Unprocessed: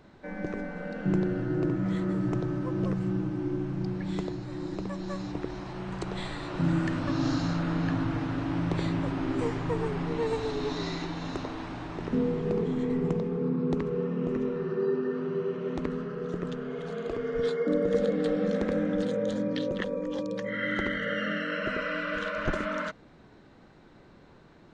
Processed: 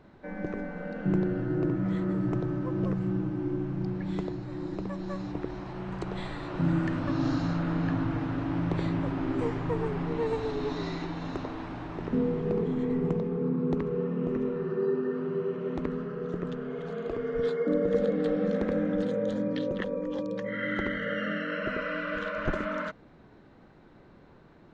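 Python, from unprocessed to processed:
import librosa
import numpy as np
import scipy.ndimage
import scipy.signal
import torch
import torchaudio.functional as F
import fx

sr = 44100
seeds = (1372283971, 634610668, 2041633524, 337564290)

y = fx.high_shelf(x, sr, hz=3900.0, db=-10.5)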